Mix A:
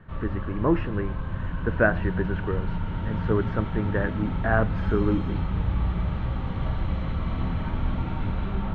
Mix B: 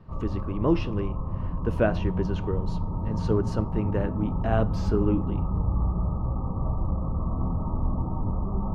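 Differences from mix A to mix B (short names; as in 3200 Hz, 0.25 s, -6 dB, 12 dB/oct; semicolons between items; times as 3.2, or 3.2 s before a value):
speech: remove synth low-pass 1700 Hz, resonance Q 4.6; background: add brick-wall FIR low-pass 1300 Hz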